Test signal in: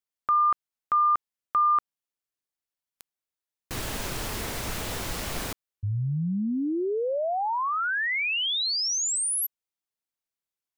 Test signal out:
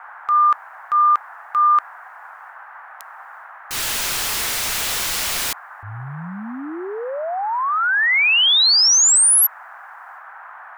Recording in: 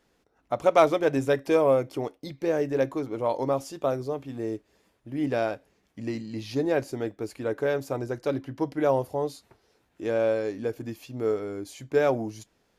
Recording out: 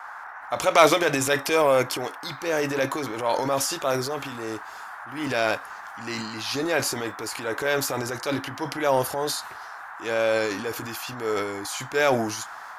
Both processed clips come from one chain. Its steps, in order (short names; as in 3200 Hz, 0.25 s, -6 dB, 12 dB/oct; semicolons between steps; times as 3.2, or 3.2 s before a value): tilt shelf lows -9.5 dB, about 830 Hz; transient shaper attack -4 dB, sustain +8 dB; band noise 730–1700 Hz -44 dBFS; gain +4.5 dB